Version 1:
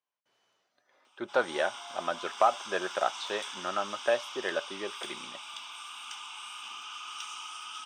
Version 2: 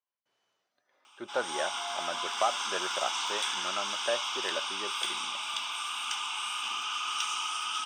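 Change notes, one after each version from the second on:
speech −4.5 dB
background +8.5 dB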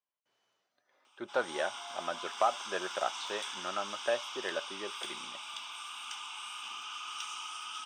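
background −8.5 dB

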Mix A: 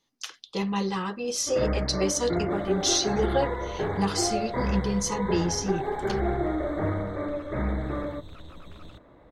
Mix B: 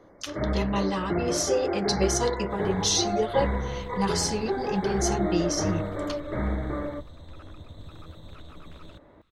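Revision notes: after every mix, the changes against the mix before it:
first sound: entry −1.20 s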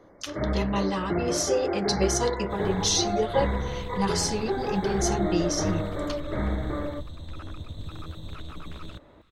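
second sound +6.5 dB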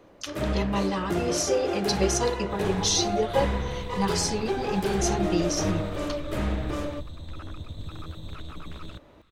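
first sound: remove linear-phase brick-wall low-pass 2,300 Hz

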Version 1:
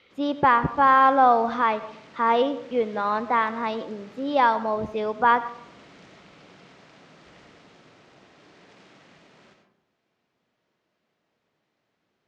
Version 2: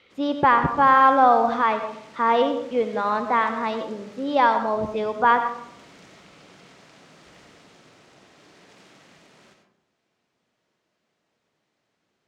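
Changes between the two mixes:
speech: send +7.5 dB
background: remove high-frequency loss of the air 90 metres

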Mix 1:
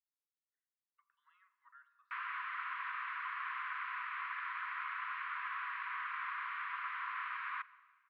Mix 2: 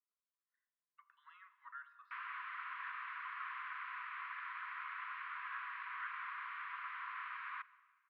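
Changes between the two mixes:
speech +10.0 dB
background −4.5 dB

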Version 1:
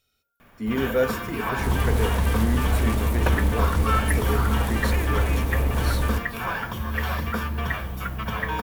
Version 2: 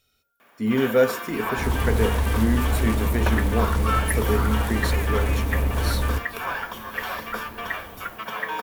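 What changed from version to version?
speech +4.0 dB
first sound: add high-pass filter 390 Hz 12 dB per octave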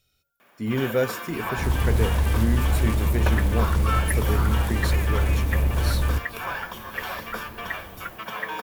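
reverb: off

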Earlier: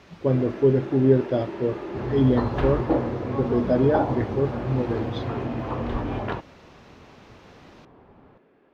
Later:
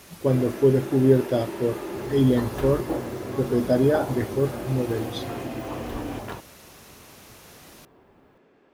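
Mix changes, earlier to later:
second sound −7.0 dB
master: remove high-frequency loss of the air 200 metres

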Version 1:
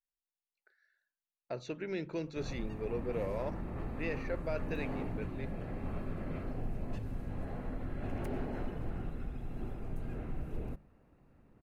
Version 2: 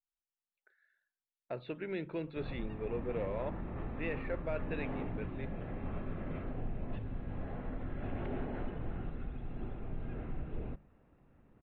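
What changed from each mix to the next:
master: add elliptic low-pass filter 3,600 Hz, stop band 50 dB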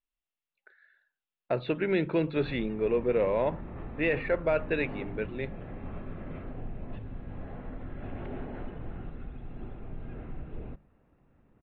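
speech +11.5 dB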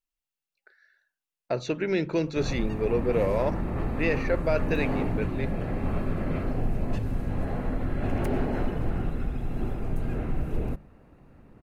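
background +10.5 dB
master: remove elliptic low-pass filter 3,600 Hz, stop band 50 dB

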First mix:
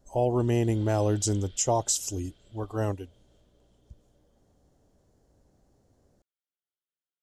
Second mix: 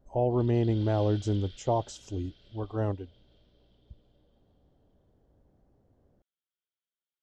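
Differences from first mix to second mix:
speech: add head-to-tape spacing loss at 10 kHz 30 dB
background: add high-shelf EQ 2,800 Hz +7.5 dB

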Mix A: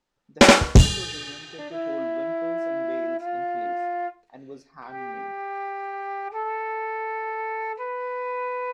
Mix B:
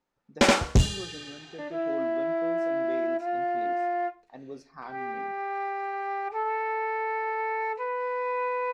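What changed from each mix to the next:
first sound −7.5 dB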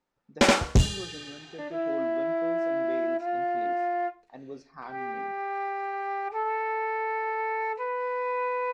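speech: add low-pass filter 6,500 Hz

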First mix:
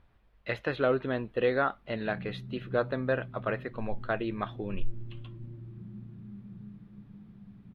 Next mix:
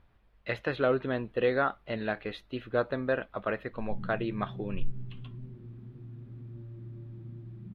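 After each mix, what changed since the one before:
background: entry +1.85 s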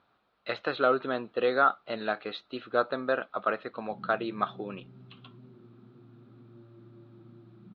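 master: add loudspeaker in its box 230–5,900 Hz, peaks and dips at 740 Hz +4 dB, 1,300 Hz +10 dB, 1,900 Hz −5 dB, 4,000 Hz +8 dB

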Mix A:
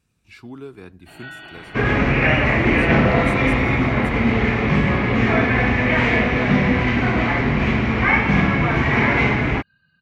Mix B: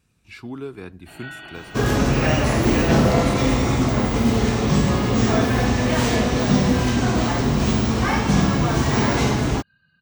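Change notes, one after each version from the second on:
speech +3.5 dB
second sound: remove low-pass with resonance 2,200 Hz, resonance Q 4.5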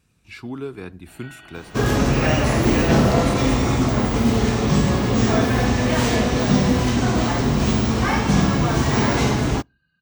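first sound −7.0 dB
reverb: on, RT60 0.35 s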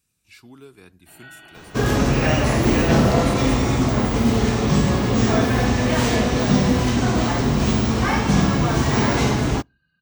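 speech: add first-order pre-emphasis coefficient 0.8

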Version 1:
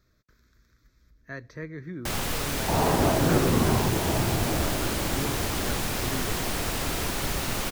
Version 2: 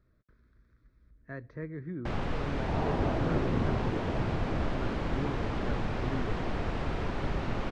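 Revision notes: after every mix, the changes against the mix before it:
second sound −7.0 dB
master: add head-to-tape spacing loss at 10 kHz 39 dB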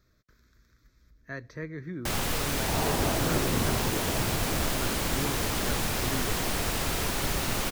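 master: remove head-to-tape spacing loss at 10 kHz 39 dB

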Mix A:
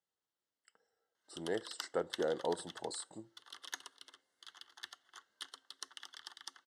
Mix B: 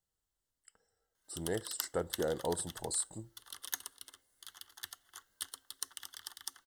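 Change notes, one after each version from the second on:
master: remove band-pass filter 240–4,800 Hz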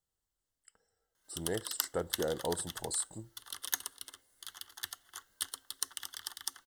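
background +4.5 dB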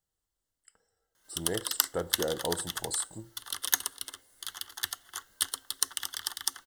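speech: send +8.0 dB
background +7.5 dB

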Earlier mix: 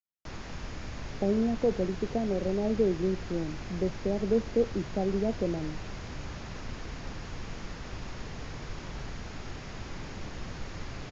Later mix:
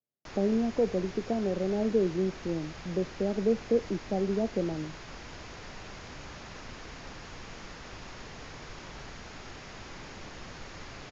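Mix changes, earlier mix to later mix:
speech: entry −0.85 s
background: add low-shelf EQ 270 Hz −9 dB

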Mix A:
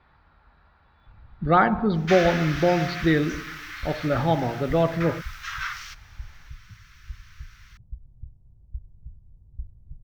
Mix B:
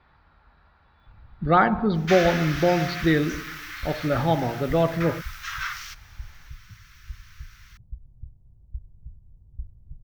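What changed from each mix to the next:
master: add high-shelf EQ 9,200 Hz +9 dB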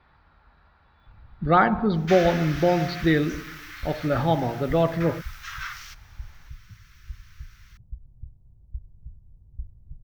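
second sound −4.0 dB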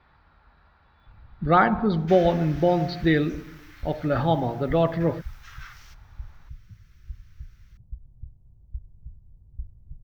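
second sound −10.5 dB

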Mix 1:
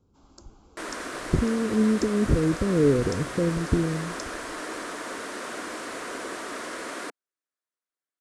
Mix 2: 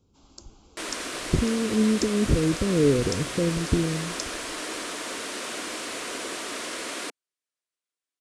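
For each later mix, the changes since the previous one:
master: add high shelf with overshoot 2,100 Hz +6 dB, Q 1.5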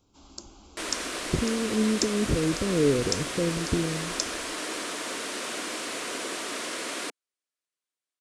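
speech: add spectral tilt +1.5 dB per octave
first sound +5.0 dB

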